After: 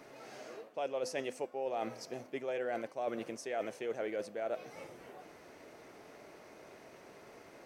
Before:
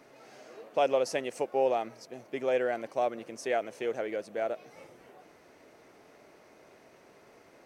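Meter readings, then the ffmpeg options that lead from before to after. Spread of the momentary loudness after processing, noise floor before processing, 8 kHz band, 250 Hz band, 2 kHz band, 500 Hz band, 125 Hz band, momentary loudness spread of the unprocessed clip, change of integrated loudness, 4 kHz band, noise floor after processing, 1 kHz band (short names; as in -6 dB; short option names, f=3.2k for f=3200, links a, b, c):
17 LU, -59 dBFS, -4.0 dB, -4.0 dB, -6.0 dB, -7.5 dB, -3.5 dB, 13 LU, -8.0 dB, -5.5 dB, -57 dBFS, -8.0 dB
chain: -af "bandreject=f=255.3:t=h:w=4,bandreject=f=510.6:t=h:w=4,bandreject=f=765.9:t=h:w=4,bandreject=f=1.0212k:t=h:w=4,bandreject=f=1.2765k:t=h:w=4,bandreject=f=1.5318k:t=h:w=4,bandreject=f=1.7871k:t=h:w=4,bandreject=f=2.0424k:t=h:w=4,bandreject=f=2.2977k:t=h:w=4,bandreject=f=2.553k:t=h:w=4,bandreject=f=2.8083k:t=h:w=4,bandreject=f=3.0636k:t=h:w=4,bandreject=f=3.3189k:t=h:w=4,bandreject=f=3.5742k:t=h:w=4,bandreject=f=3.8295k:t=h:w=4,bandreject=f=4.0848k:t=h:w=4,bandreject=f=4.3401k:t=h:w=4,bandreject=f=4.5954k:t=h:w=4,bandreject=f=4.8507k:t=h:w=4,bandreject=f=5.106k:t=h:w=4,bandreject=f=5.3613k:t=h:w=4,bandreject=f=5.6166k:t=h:w=4,bandreject=f=5.8719k:t=h:w=4,bandreject=f=6.1272k:t=h:w=4,bandreject=f=6.3825k:t=h:w=4,bandreject=f=6.6378k:t=h:w=4,bandreject=f=6.8931k:t=h:w=4,bandreject=f=7.1484k:t=h:w=4,bandreject=f=7.4037k:t=h:w=4,bandreject=f=7.659k:t=h:w=4,bandreject=f=7.9143k:t=h:w=4,areverse,acompressor=threshold=-36dB:ratio=10,areverse,volume=2.5dB"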